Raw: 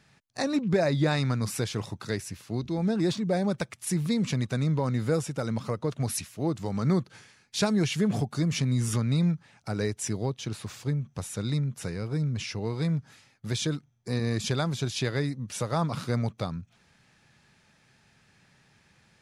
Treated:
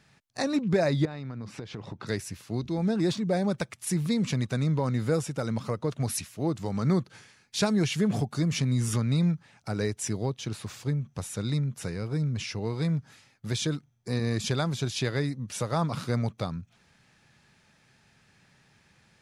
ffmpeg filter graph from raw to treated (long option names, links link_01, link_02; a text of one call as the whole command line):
ffmpeg -i in.wav -filter_complex "[0:a]asettb=1/sr,asplit=3[link_01][link_02][link_03];[link_01]atrim=end=1.054[link_04];[link_02]atrim=start=1.05:end=2.07,asetpts=PTS-STARTPTS,afade=type=in:duration=0.004:curve=qsin,afade=type=out:start_time=1.016:duration=0.004:curve=qsin,equalizer=frequency=310:width=0.43:gain=6,acompressor=threshold=-33dB:ratio=12:attack=3.2:release=140:knee=1:detection=peak,lowpass=3800[link_05];[link_03]atrim=start=2.066[link_06];[link_04][link_05]acrossfade=duration=0.004:curve1=hsin:curve2=qsin[link_07];[link_07][link_06]acrossfade=duration=0.004:curve1=qsin:curve2=hsin" out.wav